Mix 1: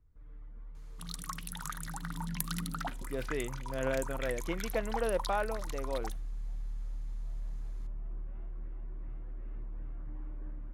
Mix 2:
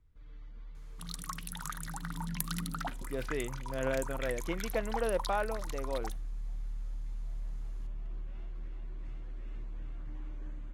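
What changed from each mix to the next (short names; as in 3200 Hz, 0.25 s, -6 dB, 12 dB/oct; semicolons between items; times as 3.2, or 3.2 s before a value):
first sound: remove LPF 1500 Hz 12 dB/oct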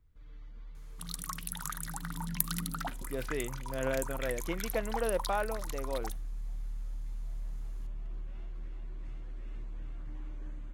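master: add high shelf 11000 Hz +11 dB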